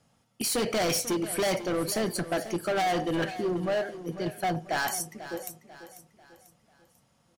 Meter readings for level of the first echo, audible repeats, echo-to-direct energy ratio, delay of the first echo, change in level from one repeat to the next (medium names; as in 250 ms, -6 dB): -13.5 dB, 3, -12.5 dB, 493 ms, -7.5 dB